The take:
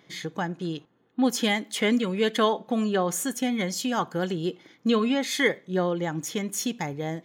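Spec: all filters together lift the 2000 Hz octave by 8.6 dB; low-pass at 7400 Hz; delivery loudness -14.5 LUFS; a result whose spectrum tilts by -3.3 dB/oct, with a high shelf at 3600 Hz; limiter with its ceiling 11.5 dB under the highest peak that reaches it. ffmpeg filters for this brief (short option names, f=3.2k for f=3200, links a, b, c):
-af "lowpass=7.4k,equalizer=f=2k:t=o:g=8,highshelf=f=3.6k:g=6,volume=12dB,alimiter=limit=-4dB:level=0:latency=1"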